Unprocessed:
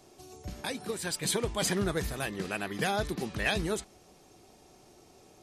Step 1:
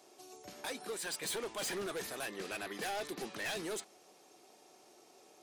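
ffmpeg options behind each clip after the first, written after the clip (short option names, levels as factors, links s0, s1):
-af "highpass=360,volume=47.3,asoftclip=hard,volume=0.0211,volume=0.794"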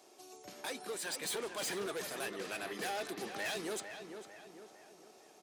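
-filter_complex "[0:a]highpass=f=120:p=1,asplit=2[s0][s1];[s1]adelay=451,lowpass=f=2800:p=1,volume=0.398,asplit=2[s2][s3];[s3]adelay=451,lowpass=f=2800:p=1,volume=0.49,asplit=2[s4][s5];[s5]adelay=451,lowpass=f=2800:p=1,volume=0.49,asplit=2[s6][s7];[s7]adelay=451,lowpass=f=2800:p=1,volume=0.49,asplit=2[s8][s9];[s9]adelay=451,lowpass=f=2800:p=1,volume=0.49,asplit=2[s10][s11];[s11]adelay=451,lowpass=f=2800:p=1,volume=0.49[s12];[s0][s2][s4][s6][s8][s10][s12]amix=inputs=7:normalize=0"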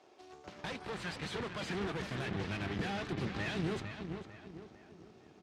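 -af "aeval=exprs='0.0316*(cos(1*acos(clip(val(0)/0.0316,-1,1)))-cos(1*PI/2))+0.0112*(cos(6*acos(clip(val(0)/0.0316,-1,1)))-cos(6*PI/2))':c=same,highpass=100,lowpass=3300,asubboost=boost=8:cutoff=220"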